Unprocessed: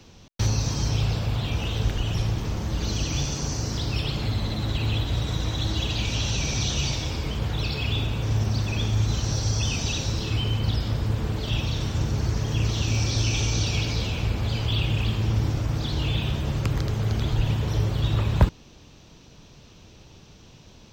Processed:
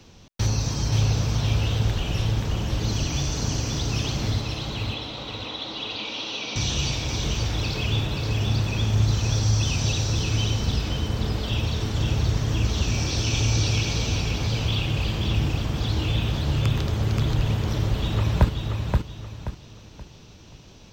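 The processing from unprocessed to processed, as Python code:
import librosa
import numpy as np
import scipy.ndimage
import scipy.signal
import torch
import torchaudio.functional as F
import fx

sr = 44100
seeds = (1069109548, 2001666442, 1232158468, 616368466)

y = fx.cabinet(x, sr, low_hz=270.0, low_slope=24, high_hz=4500.0, hz=(360.0, 660.0, 1700.0), db=(-9, -3, -9), at=(4.41, 6.56))
y = fx.echo_feedback(y, sr, ms=528, feedback_pct=32, wet_db=-4.0)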